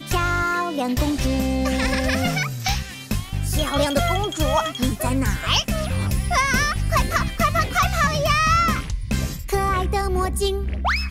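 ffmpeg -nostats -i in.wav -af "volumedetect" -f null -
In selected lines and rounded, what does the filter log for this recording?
mean_volume: -21.3 dB
max_volume: -9.3 dB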